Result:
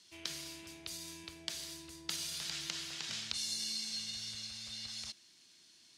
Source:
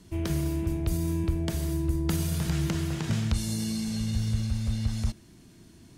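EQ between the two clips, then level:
resonant band-pass 4,400 Hz, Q 1.5
+4.0 dB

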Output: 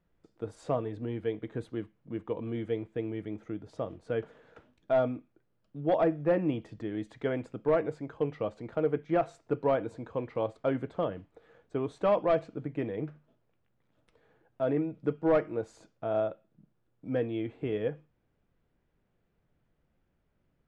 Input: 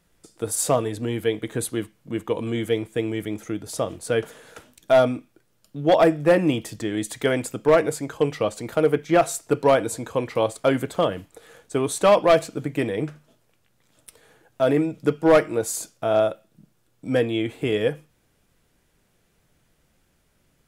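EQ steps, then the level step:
head-to-tape spacing loss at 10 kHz 34 dB
−7.5 dB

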